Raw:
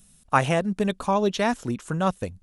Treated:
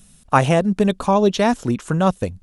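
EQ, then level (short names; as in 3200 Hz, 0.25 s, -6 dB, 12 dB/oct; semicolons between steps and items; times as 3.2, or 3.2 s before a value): high shelf 7400 Hz -5 dB; dynamic EQ 1800 Hz, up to -5 dB, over -36 dBFS, Q 0.74; +7.5 dB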